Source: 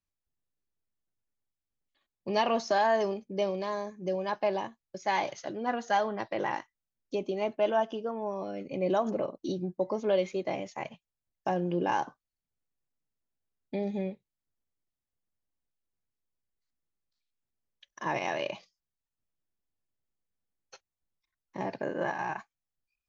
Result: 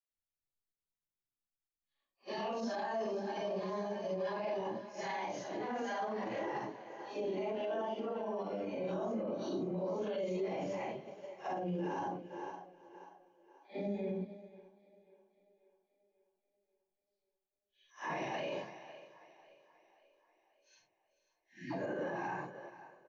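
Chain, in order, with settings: phase randomisation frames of 200 ms; spectral selection erased 19.44–21.68 s, 350–1500 Hz; phase dispersion lows, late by 110 ms, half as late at 560 Hz; on a send: feedback delay 437 ms, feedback 38%, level -18.5 dB; on the sum: dynamic bell 320 Hz, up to +4 dB, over -44 dBFS, Q 0.74; two-band feedback delay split 340 Hz, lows 121 ms, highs 538 ms, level -16 dB; peak limiter -29 dBFS, peak gain reduction 16.5 dB; upward expansion 1.5:1, over -53 dBFS

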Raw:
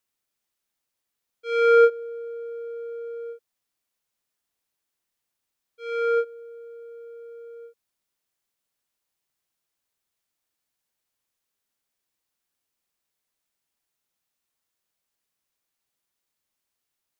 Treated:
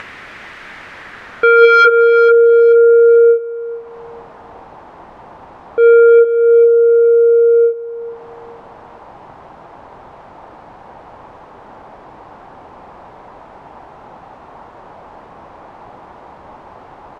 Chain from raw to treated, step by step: upward compressor, threshold -25 dBFS; Chebyshev shaper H 3 -19 dB, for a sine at -8.5 dBFS; wavefolder -22 dBFS; low-pass sweep 1.9 kHz -> 870 Hz, 0.77–4.10 s; on a send: feedback delay 438 ms, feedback 27%, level -17 dB; on the sum: loudness maximiser +25.5 dB; trim -1 dB

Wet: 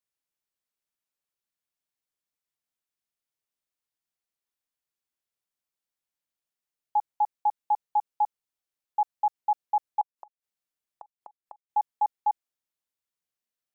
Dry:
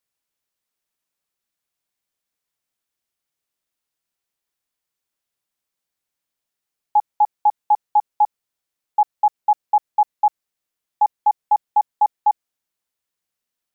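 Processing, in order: 10.01–11.70 s: inverted gate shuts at -22 dBFS, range -35 dB; trim -8.5 dB

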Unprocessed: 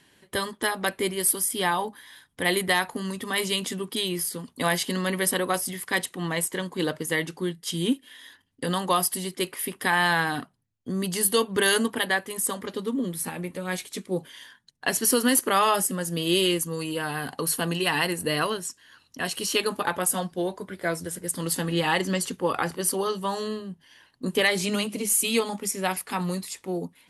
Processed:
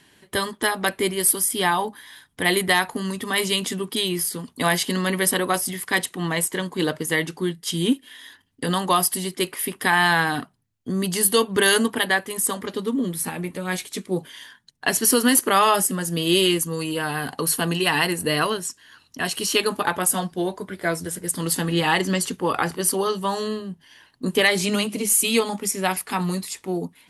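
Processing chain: band-stop 530 Hz, Q 12; trim +4 dB

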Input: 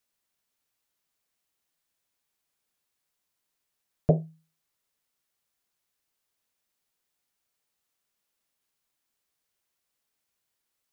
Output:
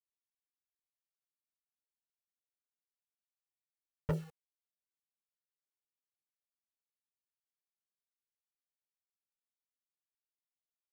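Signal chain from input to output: hard clipper -20.5 dBFS, distortion -7 dB; bit crusher 8-bit; Shepard-style flanger falling 0.41 Hz; trim -3 dB

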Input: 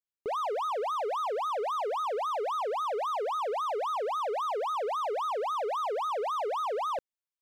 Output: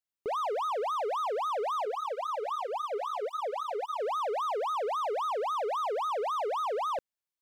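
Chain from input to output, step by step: 1.85–4.00 s: cancelling through-zero flanger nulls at 1.6 Hz, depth 6.6 ms

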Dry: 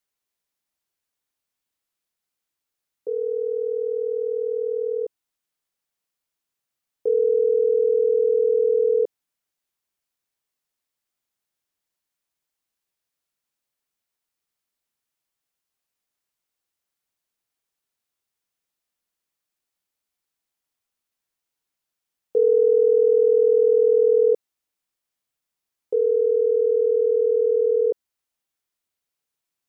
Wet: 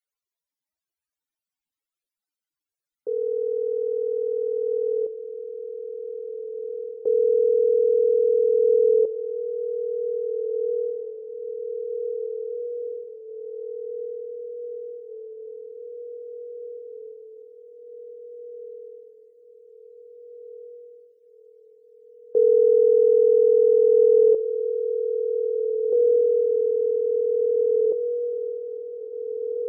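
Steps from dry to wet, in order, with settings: echo that smears into a reverb 1845 ms, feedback 67%, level -8.5 dB; loudest bins only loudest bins 64

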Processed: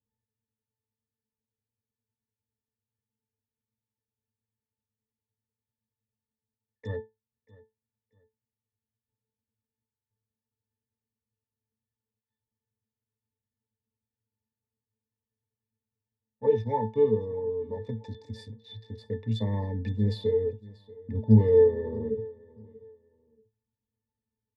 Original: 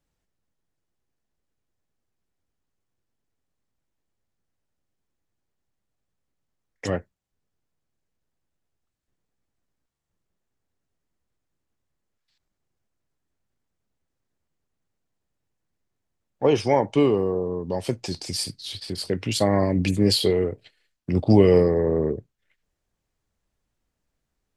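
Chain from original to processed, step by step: local Wiener filter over 15 samples; treble shelf 3 kHz +8 dB; pitch-class resonator A, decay 0.19 s; on a send: feedback delay 635 ms, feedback 26%, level -21.5 dB; on the sum: trim +4 dB

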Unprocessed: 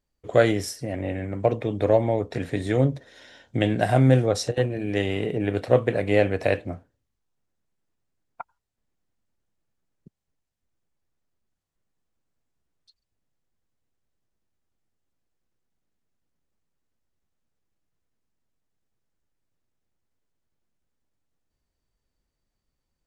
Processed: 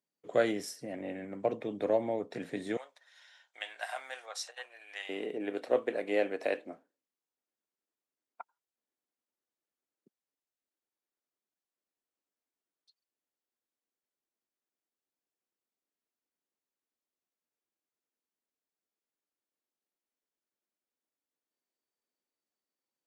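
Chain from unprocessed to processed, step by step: high-pass 170 Hz 24 dB/octave, from 2.77 s 880 Hz, from 5.09 s 260 Hz; trim -9 dB

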